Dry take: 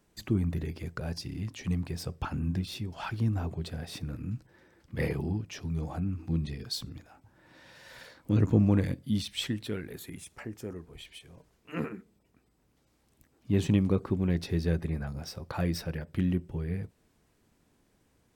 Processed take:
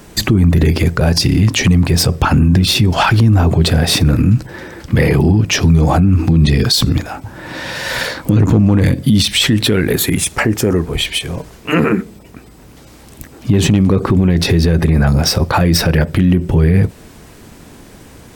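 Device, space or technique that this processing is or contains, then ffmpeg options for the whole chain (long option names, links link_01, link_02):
loud club master: -af "acompressor=threshold=-34dB:ratio=1.5,asoftclip=type=hard:threshold=-20.5dB,alimiter=level_in=32.5dB:limit=-1dB:release=50:level=0:latency=1,volume=-2.5dB"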